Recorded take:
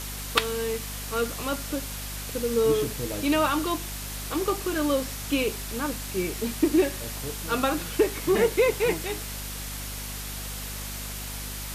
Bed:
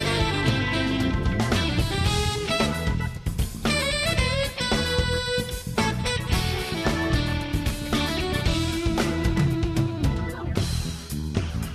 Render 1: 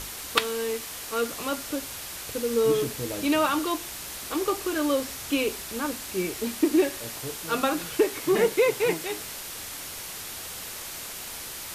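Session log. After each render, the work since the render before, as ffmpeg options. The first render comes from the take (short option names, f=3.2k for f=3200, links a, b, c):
-af "bandreject=f=50:t=h:w=6,bandreject=f=100:t=h:w=6,bandreject=f=150:t=h:w=6,bandreject=f=200:t=h:w=6,bandreject=f=250:t=h:w=6"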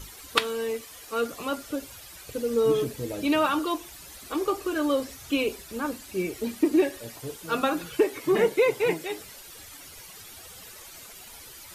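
-af "afftdn=nr=12:nf=-38"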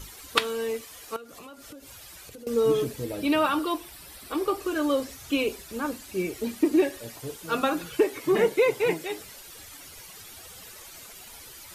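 -filter_complex "[0:a]asettb=1/sr,asplit=3[a][b][c];[a]atrim=end=1.164[d];[b]atrim=start=1.16:end=2.47,asetpts=PTS-STARTPTS,afade=t=in:d=0.004:c=qsin,afade=t=out:st=1.306:d=0.004:c=qsin,acompressor=threshold=-41dB:ratio=10:attack=3.2:release=140:knee=1:detection=peak[e];[c]atrim=start=2.466[f];[d][e]acrossfade=d=0.004:c1=hsin:c2=qsin[g];[g][f]acrossfade=d=0.004:c1=qsin:c2=hsin,asettb=1/sr,asplit=3[h][i][j];[h]atrim=end=3.044[k];[i]atrim=start=3.04:end=4.6,asetpts=PTS-STARTPTS,afade=t=in:d=0.004:c=qsin,afade=t=out:st=1.556:d=0.004:c=qsin,equalizer=f=6.6k:w=5.2:g=-9.5[l];[j]atrim=start=4.596[m];[k][l]acrossfade=d=0.004:c1=hsin:c2=qsin[n];[n][m]acrossfade=d=0.004:c1=qsin:c2=hsin"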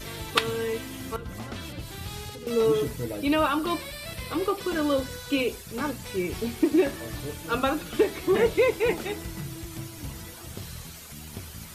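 -filter_complex "[1:a]volume=-14.5dB[a];[0:a][a]amix=inputs=2:normalize=0"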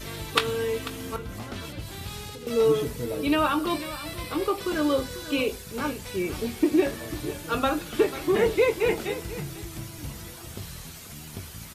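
-filter_complex "[0:a]asplit=2[a][b];[b]adelay=20,volume=-11dB[c];[a][c]amix=inputs=2:normalize=0,aecho=1:1:493:0.188"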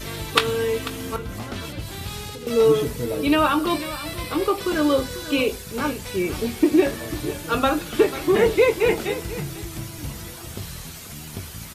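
-af "volume=4.5dB"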